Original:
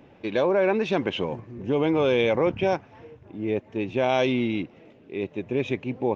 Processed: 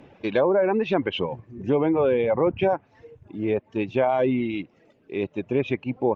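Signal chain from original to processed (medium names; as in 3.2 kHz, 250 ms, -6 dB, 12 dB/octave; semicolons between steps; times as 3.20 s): low-pass that closes with the level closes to 1.4 kHz, closed at -18 dBFS; reverb removal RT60 1.2 s; trim +3 dB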